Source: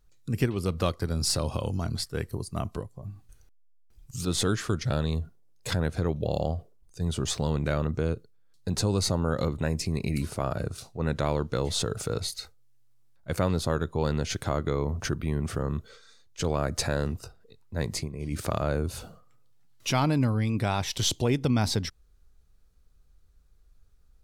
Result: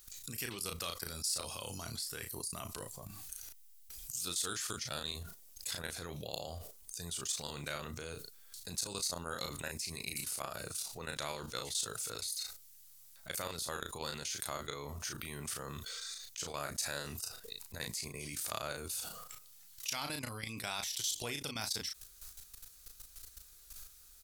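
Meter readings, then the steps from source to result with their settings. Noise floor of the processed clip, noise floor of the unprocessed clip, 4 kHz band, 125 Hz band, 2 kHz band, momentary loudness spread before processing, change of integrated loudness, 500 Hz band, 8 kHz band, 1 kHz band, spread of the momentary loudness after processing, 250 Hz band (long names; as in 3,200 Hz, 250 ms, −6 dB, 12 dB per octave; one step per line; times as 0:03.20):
−58 dBFS, −59 dBFS, −5.0 dB, −20.5 dB, −5.5 dB, 10 LU, −10.5 dB, −15.0 dB, −2.0 dB, −10.0 dB, 15 LU, −19.0 dB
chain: first-order pre-emphasis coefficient 0.97
output level in coarse steps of 16 dB
double-tracking delay 35 ms −9 dB
envelope flattener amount 70%
level −3 dB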